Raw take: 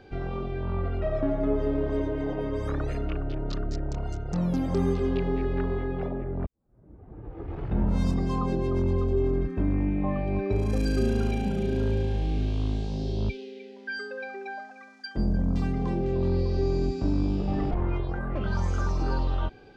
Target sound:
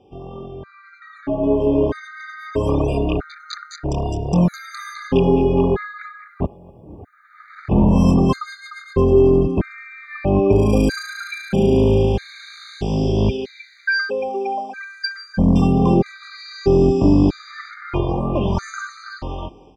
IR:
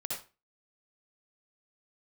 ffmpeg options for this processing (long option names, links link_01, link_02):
-filter_complex "[0:a]highpass=frequency=130:poles=1,dynaudnorm=framelen=620:gausssize=5:maxgain=16dB,aecho=1:1:246|492|738|984:0.0668|0.0374|0.021|0.0117,asplit=2[link_01][link_02];[1:a]atrim=start_sample=2205,lowpass=3500[link_03];[link_02][link_03]afir=irnorm=-1:irlink=0,volume=-24dB[link_04];[link_01][link_04]amix=inputs=2:normalize=0,afftfilt=real='re*gt(sin(2*PI*0.78*pts/sr)*(1-2*mod(floor(b*sr/1024/1200),2)),0)':imag='im*gt(sin(2*PI*0.78*pts/sr)*(1-2*mod(floor(b*sr/1024/1200),2)),0)':win_size=1024:overlap=0.75"